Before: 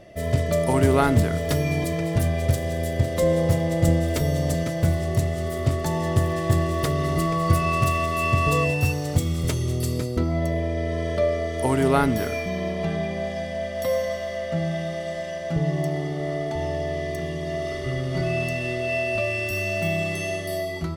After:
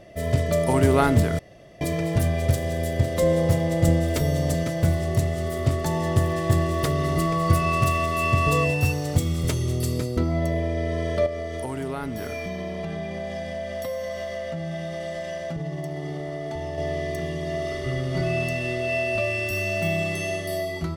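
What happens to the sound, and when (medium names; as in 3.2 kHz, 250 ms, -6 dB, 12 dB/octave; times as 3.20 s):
1.39–1.81 s: room tone
11.26–16.78 s: compression 5:1, threshold -27 dBFS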